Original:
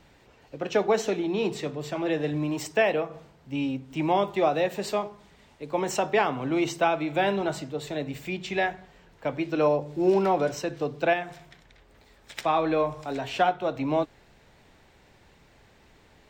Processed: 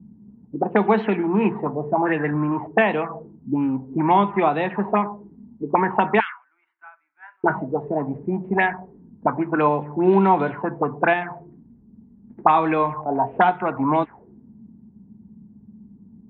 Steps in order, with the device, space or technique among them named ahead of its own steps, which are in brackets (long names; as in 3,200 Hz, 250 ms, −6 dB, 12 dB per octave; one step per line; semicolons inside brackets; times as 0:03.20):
0:06.20–0:07.44: elliptic high-pass filter 1,500 Hz, stop band 70 dB
envelope filter bass rig (envelope-controlled low-pass 200–3,800 Hz up, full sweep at −20.5 dBFS; loudspeaker in its box 77–2,000 Hz, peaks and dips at 210 Hz +10 dB, 560 Hz −9 dB, 950 Hz +8 dB)
dynamic equaliser 3,700 Hz, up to +4 dB, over −49 dBFS, Q 0.97
level +4.5 dB